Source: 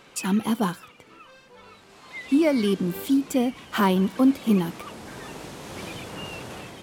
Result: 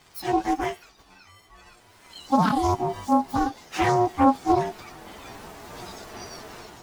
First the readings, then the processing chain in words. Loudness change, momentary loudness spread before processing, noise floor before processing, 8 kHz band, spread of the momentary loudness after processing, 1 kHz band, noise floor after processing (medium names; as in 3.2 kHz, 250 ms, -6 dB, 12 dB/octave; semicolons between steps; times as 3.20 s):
+0.5 dB, 18 LU, -53 dBFS, -3.5 dB, 21 LU, +9.0 dB, -56 dBFS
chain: frequency axis rescaled in octaves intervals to 126%; ring modulator 540 Hz; loudspeaker Doppler distortion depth 0.23 ms; trim +4 dB